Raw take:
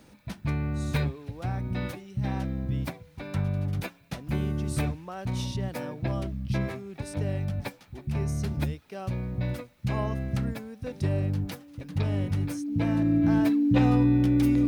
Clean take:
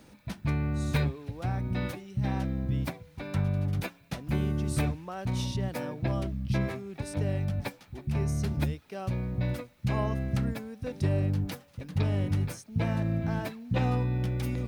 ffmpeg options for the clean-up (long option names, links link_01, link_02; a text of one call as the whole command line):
ffmpeg -i in.wav -af "bandreject=frequency=290:width=30,asetnsamples=nb_out_samples=441:pad=0,asendcmd='13.23 volume volume -3dB',volume=0dB" out.wav